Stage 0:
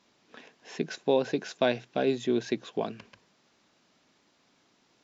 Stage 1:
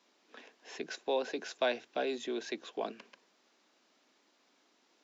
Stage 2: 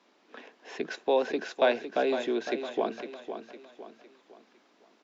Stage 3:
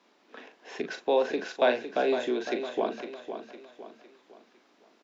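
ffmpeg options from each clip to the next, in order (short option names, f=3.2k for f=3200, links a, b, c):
-filter_complex "[0:a]highpass=f=250:w=0.5412,highpass=f=250:w=1.3066,acrossover=split=530|710[a][b][c];[a]alimiter=level_in=6dB:limit=-24dB:level=0:latency=1:release=44,volume=-6dB[d];[d][b][c]amix=inputs=3:normalize=0,volume=-3dB"
-filter_complex "[0:a]lowpass=f=2.2k:p=1,asplit=2[a][b];[b]aecho=0:1:507|1014|1521|2028:0.335|0.134|0.0536|0.0214[c];[a][c]amix=inputs=2:normalize=0,volume=7.5dB"
-filter_complex "[0:a]asplit=2[a][b];[b]adelay=40,volume=-8dB[c];[a][c]amix=inputs=2:normalize=0"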